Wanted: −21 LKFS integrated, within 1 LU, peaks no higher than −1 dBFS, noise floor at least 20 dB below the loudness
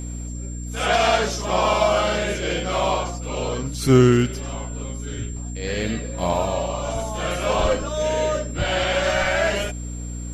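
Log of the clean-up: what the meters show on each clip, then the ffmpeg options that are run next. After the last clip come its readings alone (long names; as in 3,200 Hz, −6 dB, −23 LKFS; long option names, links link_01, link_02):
mains hum 60 Hz; hum harmonics up to 300 Hz; level of the hum −28 dBFS; interfering tone 7,400 Hz; level of the tone −39 dBFS; integrated loudness −22.5 LKFS; sample peak −1.5 dBFS; target loudness −21.0 LKFS
→ -af "bandreject=frequency=60:width_type=h:width=4,bandreject=frequency=120:width_type=h:width=4,bandreject=frequency=180:width_type=h:width=4,bandreject=frequency=240:width_type=h:width=4,bandreject=frequency=300:width_type=h:width=4"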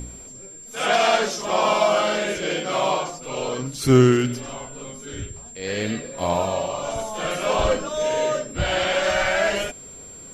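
mains hum none found; interfering tone 7,400 Hz; level of the tone −39 dBFS
→ -af "bandreject=frequency=7400:width=30"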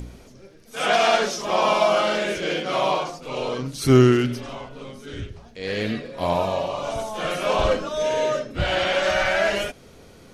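interfering tone none found; integrated loudness −22.0 LKFS; sample peak −2.5 dBFS; target loudness −21.0 LKFS
→ -af "volume=1dB"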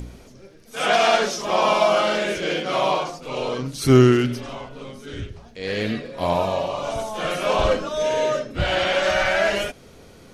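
integrated loudness −21.0 LKFS; sample peak −1.5 dBFS; background noise floor −47 dBFS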